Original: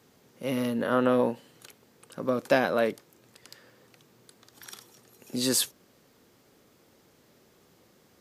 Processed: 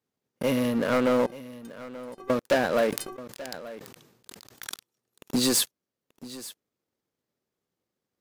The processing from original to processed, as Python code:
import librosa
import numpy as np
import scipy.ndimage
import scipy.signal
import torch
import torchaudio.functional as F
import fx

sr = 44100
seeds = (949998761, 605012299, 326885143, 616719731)

y = fx.transient(x, sr, attack_db=7, sustain_db=-3)
y = fx.leveller(y, sr, passes=5)
y = fx.stiff_resonator(y, sr, f0_hz=370.0, decay_s=0.21, stiffness=0.008, at=(1.26, 2.3))
y = y + 10.0 ** (-17.0 / 20.0) * np.pad(y, (int(883 * sr / 1000.0), 0))[:len(y)]
y = fx.sustainer(y, sr, db_per_s=59.0, at=(2.88, 4.76))
y = F.gain(torch.from_numpy(y), -15.0).numpy()